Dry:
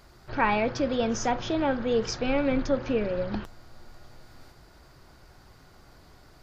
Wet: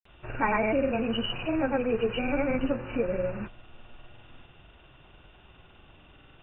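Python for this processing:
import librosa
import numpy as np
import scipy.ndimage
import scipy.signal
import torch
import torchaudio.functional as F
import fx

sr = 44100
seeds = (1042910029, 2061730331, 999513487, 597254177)

y = fx.freq_compress(x, sr, knee_hz=2300.0, ratio=4.0)
y = fx.granulator(y, sr, seeds[0], grain_ms=100.0, per_s=20.0, spray_ms=100.0, spread_st=0)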